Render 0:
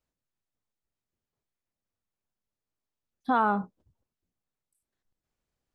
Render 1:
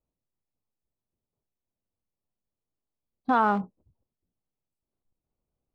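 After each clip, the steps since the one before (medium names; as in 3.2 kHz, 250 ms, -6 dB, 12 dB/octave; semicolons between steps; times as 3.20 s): local Wiener filter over 25 samples; trim +2 dB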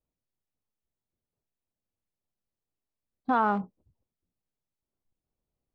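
treble shelf 4.4 kHz -6.5 dB; trim -2 dB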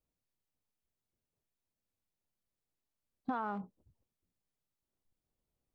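compression 10:1, threshold -32 dBFS, peak gain reduction 12.5 dB; trim -1 dB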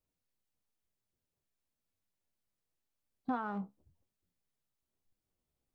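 flange 0.96 Hz, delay 9.5 ms, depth 6.1 ms, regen +55%; trim +4 dB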